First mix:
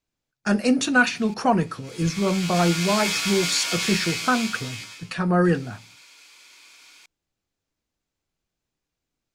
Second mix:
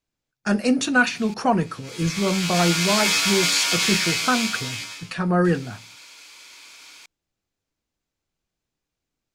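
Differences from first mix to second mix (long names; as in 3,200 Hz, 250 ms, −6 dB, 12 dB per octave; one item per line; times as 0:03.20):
background +6.5 dB
reverb: off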